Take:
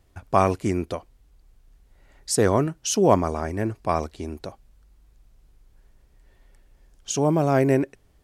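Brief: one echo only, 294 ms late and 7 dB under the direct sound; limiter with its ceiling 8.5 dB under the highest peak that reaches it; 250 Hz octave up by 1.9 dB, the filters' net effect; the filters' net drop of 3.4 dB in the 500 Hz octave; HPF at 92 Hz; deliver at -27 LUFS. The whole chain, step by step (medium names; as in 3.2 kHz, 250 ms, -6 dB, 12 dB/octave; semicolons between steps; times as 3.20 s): high-pass 92 Hz; peaking EQ 250 Hz +4.5 dB; peaking EQ 500 Hz -6 dB; peak limiter -12 dBFS; delay 294 ms -7 dB; trim -1.5 dB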